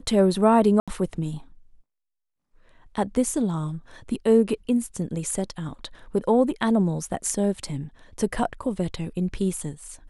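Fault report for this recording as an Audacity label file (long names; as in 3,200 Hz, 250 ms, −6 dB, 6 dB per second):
0.800000	0.880000	drop-out 76 ms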